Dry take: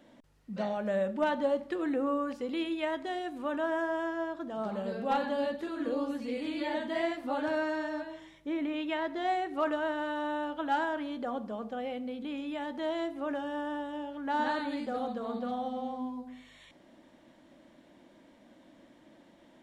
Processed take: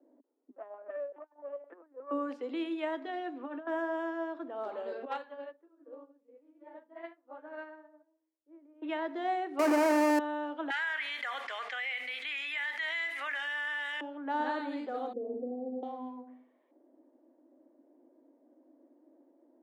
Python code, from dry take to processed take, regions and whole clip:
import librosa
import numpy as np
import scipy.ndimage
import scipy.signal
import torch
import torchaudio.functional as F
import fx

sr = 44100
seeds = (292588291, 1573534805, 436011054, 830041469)

y = fx.chain(x, sr, fx.bandpass_edges(low_hz=650.0, high_hz=2100.0),
    fx.lpc_vocoder(seeds[0], excitation='pitch_kept', order=10),
    fx.transformer_sat(knee_hz=230.0), at=(0.5, 2.11))
y = fx.chain(y, sr, fx.lowpass(hz=4700.0, slope=12),
    fx.notch_comb(f0_hz=190.0),
    fx.over_compress(threshold_db=-36.0, ratio=-0.5), at=(3.0, 3.67))
y = fx.chain(y, sr, fx.highpass(hz=480.0, slope=12),
    fx.peak_eq(hz=740.0, db=-7.0, octaves=0.51),
    fx.upward_expand(threshold_db=-44.0, expansion=2.5), at=(5.05, 8.82))
y = fx.chain(y, sr, fx.halfwave_hold(),
    fx.peak_eq(hz=3500.0, db=-12.5, octaves=0.56),
    fx.env_flatten(amount_pct=100), at=(9.59, 10.19))
y = fx.chain(y, sr, fx.highpass_res(hz=2000.0, q=6.5),
    fx.high_shelf(hz=5700.0, db=10.5),
    fx.env_flatten(amount_pct=70), at=(10.7, 14.01))
y = fx.chain(y, sr, fx.cheby2_lowpass(hz=1300.0, order=4, stop_db=50),
    fx.peak_eq(hz=340.0, db=8.0, octaves=1.6), at=(15.13, 15.83))
y = scipy.signal.sosfilt(scipy.signal.butter(12, 260.0, 'highpass', fs=sr, output='sos'), y)
y = fx.env_lowpass(y, sr, base_hz=420.0, full_db=-30.5)
y = fx.high_shelf(y, sr, hz=4300.0, db=-11.5)
y = y * librosa.db_to_amplitude(-1.5)